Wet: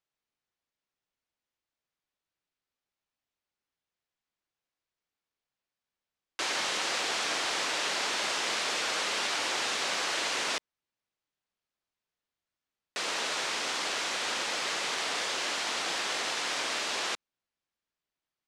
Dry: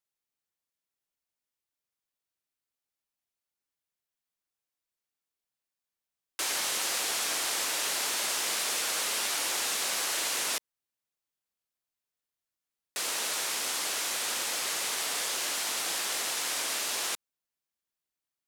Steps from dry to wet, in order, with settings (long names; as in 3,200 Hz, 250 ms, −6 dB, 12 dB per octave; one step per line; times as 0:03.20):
high-frequency loss of the air 110 metres
level +4 dB